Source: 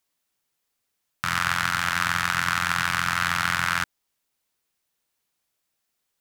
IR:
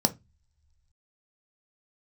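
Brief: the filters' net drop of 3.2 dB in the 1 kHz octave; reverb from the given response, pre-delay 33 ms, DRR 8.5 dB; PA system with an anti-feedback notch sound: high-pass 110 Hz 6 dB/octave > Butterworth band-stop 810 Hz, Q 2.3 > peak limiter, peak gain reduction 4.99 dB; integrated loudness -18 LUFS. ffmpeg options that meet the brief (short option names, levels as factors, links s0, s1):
-filter_complex "[0:a]equalizer=f=1000:t=o:g=-4,asplit=2[s0][s1];[1:a]atrim=start_sample=2205,adelay=33[s2];[s1][s2]afir=irnorm=-1:irlink=0,volume=0.126[s3];[s0][s3]amix=inputs=2:normalize=0,highpass=f=110:p=1,asuperstop=centerf=810:order=8:qfactor=2.3,volume=2.99,alimiter=limit=0.841:level=0:latency=1"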